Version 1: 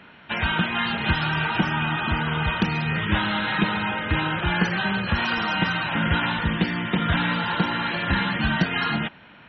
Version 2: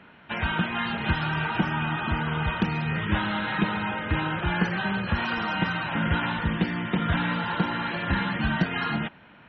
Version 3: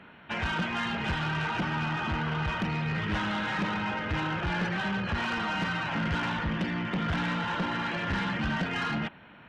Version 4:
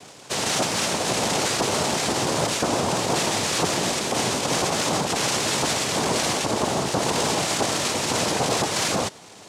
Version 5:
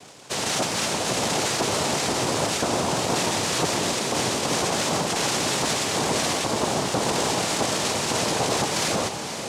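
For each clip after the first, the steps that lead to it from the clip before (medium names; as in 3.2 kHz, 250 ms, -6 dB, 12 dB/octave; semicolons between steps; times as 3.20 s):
treble shelf 3.2 kHz -9 dB; trim -2 dB
saturation -25 dBFS, distortion -10 dB
noise-vocoded speech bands 2; trim +7 dB
echo that smears into a reverb 521 ms, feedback 64%, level -9 dB; trim -1.5 dB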